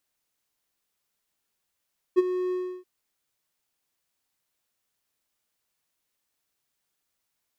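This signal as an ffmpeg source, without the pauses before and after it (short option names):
-f lavfi -i "aevalsrc='0.282*(1-4*abs(mod(365*t+0.25,1)-0.5))':d=0.679:s=44100,afade=t=in:d=0.027,afade=t=out:st=0.027:d=0.027:silence=0.251,afade=t=out:st=0.36:d=0.319"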